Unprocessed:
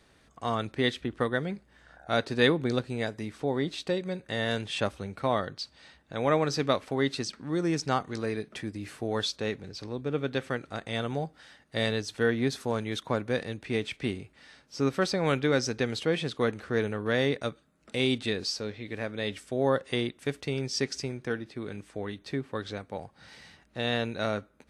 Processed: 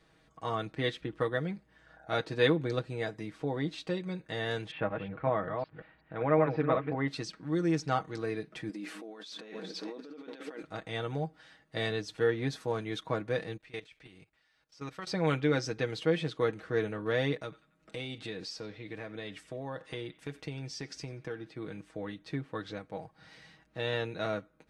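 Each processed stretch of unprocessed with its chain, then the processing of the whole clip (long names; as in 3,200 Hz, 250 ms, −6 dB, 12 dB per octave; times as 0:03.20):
0:04.71–0:07.08: delay that plays each chunk backwards 185 ms, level −5 dB + low-pass filter 2,400 Hz 24 dB per octave
0:08.69–0:10.63: feedback delay that plays each chunk backwards 204 ms, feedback 54%, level −14 dB + compressor whose output falls as the input rises −39 dBFS + linear-phase brick-wall high-pass 180 Hz
0:13.57–0:15.07: parametric band 230 Hz −10 dB 2.8 octaves + output level in coarse steps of 17 dB
0:17.43–0:21.48: downward compressor 2.5 to 1, threshold −33 dBFS + feedback echo with a band-pass in the loop 91 ms, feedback 53%, band-pass 1,900 Hz, level −17.5 dB
whole clip: high-shelf EQ 5,600 Hz −8.5 dB; comb filter 6.3 ms, depth 67%; level −4.5 dB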